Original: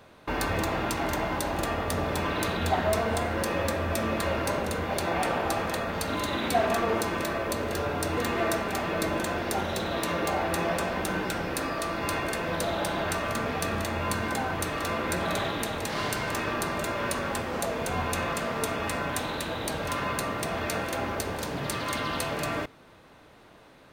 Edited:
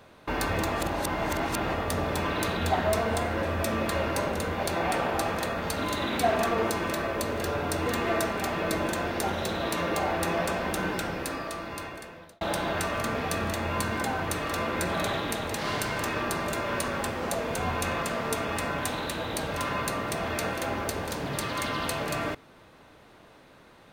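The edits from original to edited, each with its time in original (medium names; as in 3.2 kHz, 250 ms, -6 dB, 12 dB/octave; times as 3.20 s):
0.73–1.73 s: reverse
3.43–3.74 s: delete
11.23–12.72 s: fade out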